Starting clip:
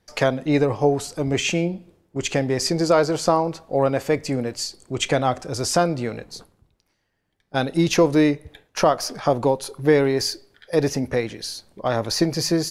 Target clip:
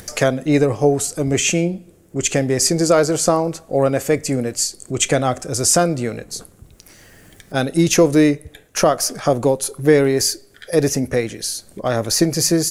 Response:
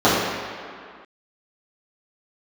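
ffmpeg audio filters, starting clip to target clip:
-af "equalizer=f=920:w=3.1:g=-7.5,acompressor=mode=upward:threshold=-29dB:ratio=2.5,highshelf=f=5.8k:t=q:w=1.5:g=7.5,volume=4dB"

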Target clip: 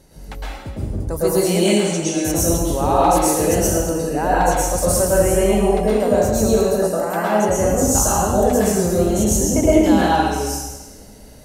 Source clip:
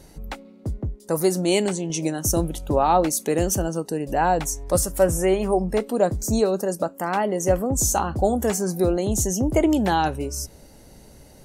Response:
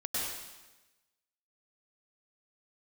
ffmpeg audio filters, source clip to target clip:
-filter_complex "[1:a]atrim=start_sample=2205,asetrate=39690,aresample=44100[a];[0:a][a]afir=irnorm=-1:irlink=0,volume=-1dB"

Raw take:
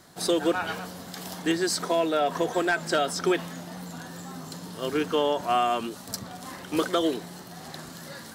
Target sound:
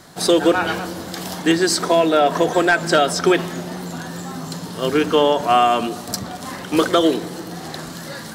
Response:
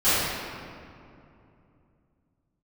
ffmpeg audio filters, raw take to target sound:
-filter_complex "[0:a]highshelf=f=11k:g=-4.5,asplit=2[a][b];[1:a]atrim=start_sample=2205,lowshelf=f=390:g=11.5[c];[b][c]afir=irnorm=-1:irlink=0,volume=-38.5dB[d];[a][d]amix=inputs=2:normalize=0,volume=9dB"

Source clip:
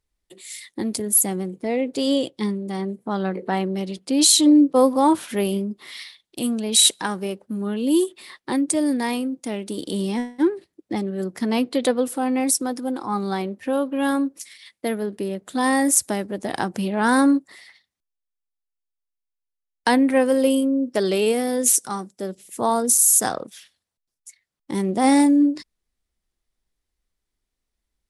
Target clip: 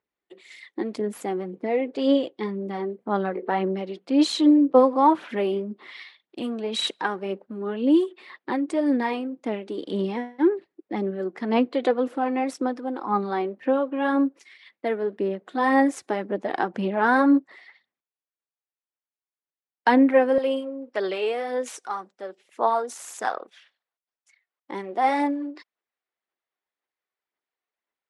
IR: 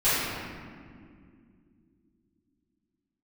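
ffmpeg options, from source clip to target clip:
-af "aphaser=in_gain=1:out_gain=1:delay=2.8:decay=0.37:speed=1.9:type=sinusoidal,asetnsamples=n=441:p=0,asendcmd='20.38 highpass f 600',highpass=270,lowpass=2.3k"

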